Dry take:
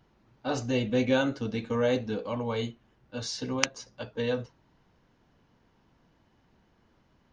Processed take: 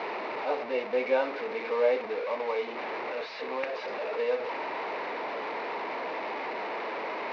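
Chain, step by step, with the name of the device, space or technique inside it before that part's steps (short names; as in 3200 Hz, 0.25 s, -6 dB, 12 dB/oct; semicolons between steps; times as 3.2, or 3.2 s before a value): digital answering machine (BPF 320–3200 Hz; delta modulation 32 kbps, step -28.5 dBFS; speaker cabinet 430–3500 Hz, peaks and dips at 440 Hz +6 dB, 630 Hz +4 dB, 930 Hz +4 dB, 1500 Hz -5 dB, 2200 Hz +5 dB, 3200 Hz -10 dB)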